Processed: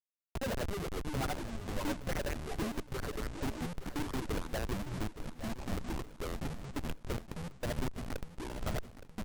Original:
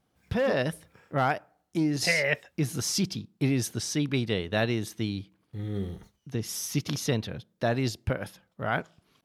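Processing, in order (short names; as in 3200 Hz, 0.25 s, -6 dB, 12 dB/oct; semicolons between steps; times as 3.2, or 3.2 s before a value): RIAA curve recording; treble ducked by the level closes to 1600 Hz, closed at -21.5 dBFS; band shelf 4000 Hz -11 dB 2.6 oct; in parallel at +3 dB: compressor 20:1, threshold -40 dBFS, peak gain reduction 18 dB; on the sum: wah 5.7 Hz 220–2900 Hz, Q 2.3; Schmitt trigger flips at -34 dBFS; echoes that change speed 0.155 s, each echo -5 st, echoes 3; feedback echo 0.867 s, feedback 47%, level -13 dB; gain +6 dB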